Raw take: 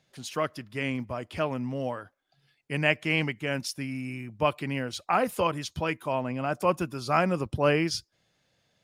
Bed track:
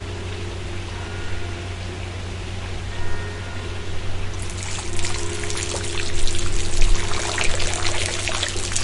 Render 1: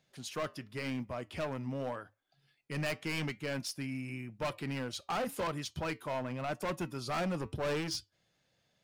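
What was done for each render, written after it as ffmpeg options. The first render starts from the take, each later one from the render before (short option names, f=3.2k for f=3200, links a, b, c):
-af "volume=26.5dB,asoftclip=hard,volume=-26.5dB,flanger=delay=4.4:depth=1.9:regen=-84:speed=0.89:shape=triangular"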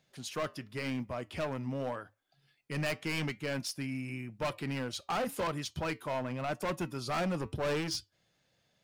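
-af "volume=1.5dB"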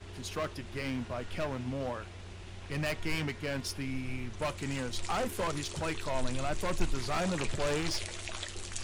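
-filter_complex "[1:a]volume=-16.5dB[a];[0:a][a]amix=inputs=2:normalize=0"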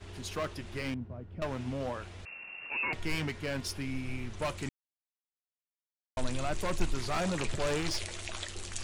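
-filter_complex "[0:a]asettb=1/sr,asplit=3[a][b][c];[a]atrim=end=0.944[d];[b]atrim=start=0.94:end=1.42,asetpts=PTS-STARTPTS,afade=t=in:d=0.004:c=qsin,afade=t=out:st=0.476:d=0.004:c=qsin,bandpass=f=120:t=q:w=0.64[e];[c]atrim=start=1.416[f];[d][e]acrossfade=d=0.004:c1=hsin:c2=qsin[g];[g][f]acrossfade=d=0.004:c1=qsin:c2=hsin,asettb=1/sr,asplit=3[h][i][j];[h]atrim=end=2.254[k];[i]atrim=start=2.25:end=2.93,asetpts=PTS-STARTPTS,afade=t=in:d=0.004:c=qsin,afade=t=out:st=0.676:d=0.004:c=qsin,lowpass=f=2.4k:t=q:w=0.5098,lowpass=f=2.4k:t=q:w=0.6013,lowpass=f=2.4k:t=q:w=0.9,lowpass=f=2.4k:t=q:w=2.563,afreqshift=-2800[l];[j]atrim=start=2.926[m];[k][l]acrossfade=d=0.004:c1=hsin:c2=qsin[n];[n][m]acrossfade=d=0.004:c1=qsin:c2=hsin,asplit=3[o][p][q];[o]atrim=end=4.69,asetpts=PTS-STARTPTS,afade=t=out:st=4.686:d=0.004:c=hsin[r];[p]atrim=start=4.69:end=6.17,asetpts=PTS-STARTPTS,volume=0[s];[q]atrim=start=6.17,asetpts=PTS-STARTPTS,afade=t=in:d=0.004:c=hsin[t];[r][s][t]concat=n=3:v=0:a=1"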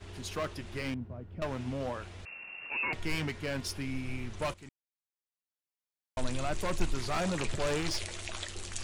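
-filter_complex "[0:a]asplit=2[a][b];[a]atrim=end=4.54,asetpts=PTS-STARTPTS,afade=t=out:st=4.536:d=0.004:c=hsin:silence=0.177828[c];[b]atrim=start=4.54,asetpts=PTS-STARTPTS,afade=t=in:d=1.72:silence=0.177828[d];[c][d]concat=n=2:v=0:a=1"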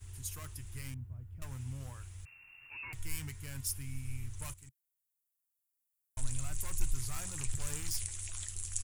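-af "firequalizer=gain_entry='entry(130,0);entry(180,-20);entry(270,-17);entry(590,-24);entry(900,-15);entry(2000,-12);entry(4300,-11);entry(7300,5);entry(12000,12)':delay=0.05:min_phase=1"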